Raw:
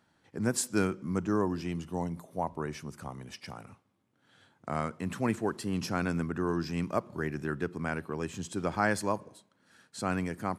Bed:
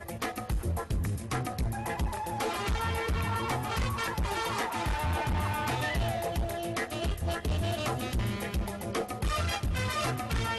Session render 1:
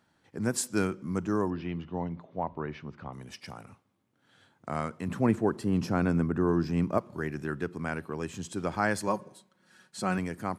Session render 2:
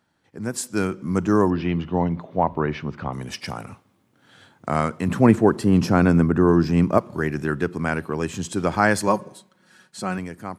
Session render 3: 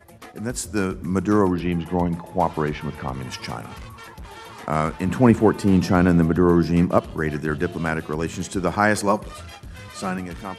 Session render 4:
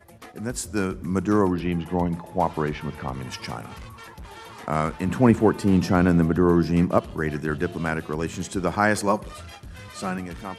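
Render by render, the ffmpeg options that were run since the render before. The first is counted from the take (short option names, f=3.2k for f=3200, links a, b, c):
-filter_complex "[0:a]asettb=1/sr,asplit=3[a][b][c];[a]atrim=end=1.504[d];[b]atrim=start=1.5:end=3.13,asetpts=PTS-STARTPTS,afade=t=in:d=0.004:c=qsin,afade=t=out:st=1.626:d=0.004:c=qsin,lowpass=f=3.6k:w=0.5412,lowpass=f=3.6k:w=1.3066[e];[c]atrim=start=3.126[f];[d][e]acrossfade=d=0.004:c1=hsin:c2=qsin[g];[g][f]acrossfade=d=0.004:c1=qsin:c2=hsin,asettb=1/sr,asplit=3[h][i][j];[h]atrim=end=5.084[k];[i]atrim=start=5.08:end=6.98,asetpts=PTS-STARTPTS,afade=t=in:d=0.004:c=qsin,afade=t=out:st=1.896:d=0.004:c=qsin,tiltshelf=f=1.4k:g=5.5[l];[j]atrim=start=6.976[m];[k][l]acrossfade=d=0.004:c1=hsin:c2=qsin[n];[n][m]acrossfade=d=0.004:c1=qsin:c2=hsin,asettb=1/sr,asplit=3[o][p][q];[o]atrim=end=9.074[r];[p]atrim=start=9.07:end=10.18,asetpts=PTS-STARTPTS,afade=t=in:d=0.004:c=qsin,afade=t=out:st=1.106:d=0.004:c=qsin,aecho=1:1:5.4:0.65,atrim=end_sample=48951[s];[q]atrim=start=10.176[t];[r][s]acrossfade=d=0.004:c1=hsin:c2=qsin[u];[u][t]acrossfade=d=0.004:c1=qsin:c2=hsin"
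-af "dynaudnorm=f=120:g=17:m=12.5dB"
-filter_complex "[1:a]volume=-8.5dB[a];[0:a][a]amix=inputs=2:normalize=0"
-af "volume=-2dB"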